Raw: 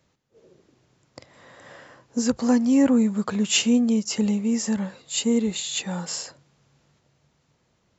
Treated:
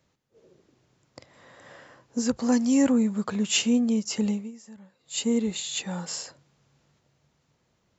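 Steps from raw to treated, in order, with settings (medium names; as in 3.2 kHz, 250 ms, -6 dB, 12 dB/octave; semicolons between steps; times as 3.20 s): 2.52–2.92 s: treble shelf 4 kHz +10.5 dB; 4.30–5.21 s: dip -19 dB, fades 0.22 s; trim -3 dB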